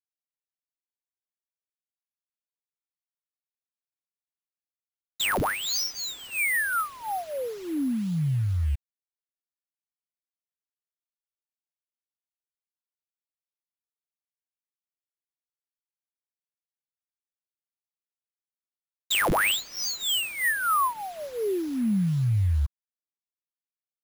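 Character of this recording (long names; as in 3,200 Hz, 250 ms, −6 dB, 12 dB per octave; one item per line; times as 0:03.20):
a quantiser's noise floor 8 bits, dither none
phaser sweep stages 4, 2.2 Hz, lowest notch 450–1,100 Hz
aliases and images of a low sample rate 11,000 Hz, jitter 0%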